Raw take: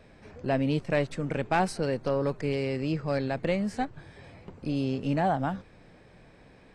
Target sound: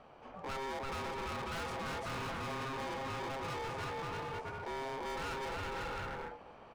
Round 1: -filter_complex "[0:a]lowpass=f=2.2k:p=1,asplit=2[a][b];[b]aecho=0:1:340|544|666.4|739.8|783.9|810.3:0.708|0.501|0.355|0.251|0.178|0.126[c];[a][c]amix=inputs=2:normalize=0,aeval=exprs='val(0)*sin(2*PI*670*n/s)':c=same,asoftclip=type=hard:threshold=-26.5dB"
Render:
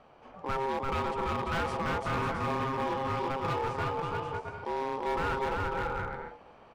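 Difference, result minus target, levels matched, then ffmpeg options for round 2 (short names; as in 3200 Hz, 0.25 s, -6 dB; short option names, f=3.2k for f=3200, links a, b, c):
hard clip: distortion -7 dB
-filter_complex "[0:a]lowpass=f=2.2k:p=1,asplit=2[a][b];[b]aecho=0:1:340|544|666.4|739.8|783.9|810.3:0.708|0.501|0.355|0.251|0.178|0.126[c];[a][c]amix=inputs=2:normalize=0,aeval=exprs='val(0)*sin(2*PI*670*n/s)':c=same,asoftclip=type=hard:threshold=-38dB"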